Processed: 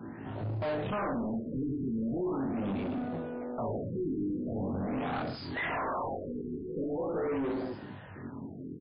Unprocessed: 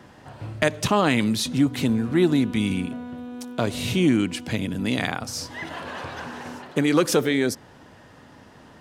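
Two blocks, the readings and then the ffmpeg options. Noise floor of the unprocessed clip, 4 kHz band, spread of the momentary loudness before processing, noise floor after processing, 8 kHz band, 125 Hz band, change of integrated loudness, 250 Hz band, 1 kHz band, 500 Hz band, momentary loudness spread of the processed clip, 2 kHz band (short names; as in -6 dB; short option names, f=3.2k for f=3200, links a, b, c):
-49 dBFS, -20.5 dB, 15 LU, -45 dBFS, under -40 dB, -10.0 dB, -11.0 dB, -10.5 dB, -6.5 dB, -8.0 dB, 9 LU, -12.0 dB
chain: -filter_complex "[0:a]equalizer=f=120:t=o:w=2.3:g=2.5,asplit=2[a][b];[b]aecho=0:1:30|66|109.2|161|223.2:0.631|0.398|0.251|0.158|0.1[c];[a][c]amix=inputs=2:normalize=0,alimiter=limit=-9.5dB:level=0:latency=1:release=290,asplit=2[d][e];[e]acompressor=threshold=-28dB:ratio=6,volume=2dB[f];[d][f]amix=inputs=2:normalize=0,asoftclip=type=tanh:threshold=-24dB,afwtdn=0.0398,flanger=delay=18:depth=5.1:speed=0.28,asplit=2[g][h];[h]highpass=f=720:p=1,volume=24dB,asoftclip=type=tanh:threshold=-21.5dB[i];[g][i]amix=inputs=2:normalize=0,lowpass=f=3.3k:p=1,volume=-6dB,afftfilt=real='re*lt(b*sr/1024,440*pow(5200/440,0.5+0.5*sin(2*PI*0.42*pts/sr)))':imag='im*lt(b*sr/1024,440*pow(5200/440,0.5+0.5*sin(2*PI*0.42*pts/sr)))':win_size=1024:overlap=0.75,volume=-5dB"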